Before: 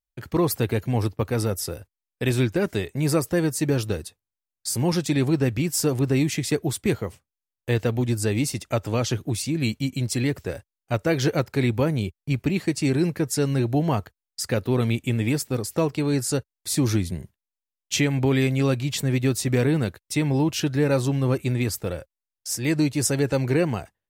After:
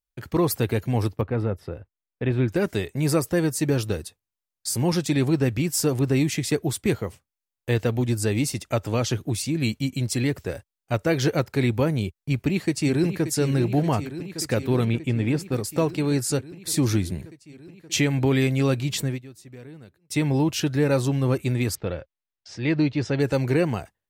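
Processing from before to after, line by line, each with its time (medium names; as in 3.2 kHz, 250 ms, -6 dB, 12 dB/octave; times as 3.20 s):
1.21–2.48 s: distance through air 490 m
12.20–13.25 s: echo throw 580 ms, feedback 80%, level -10.5 dB
14.85–15.52 s: low-pass 2.5 kHz 6 dB/octave
19.02–20.18 s: dip -21.5 dB, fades 0.20 s
21.75–23.20 s: low-pass 4.1 kHz 24 dB/octave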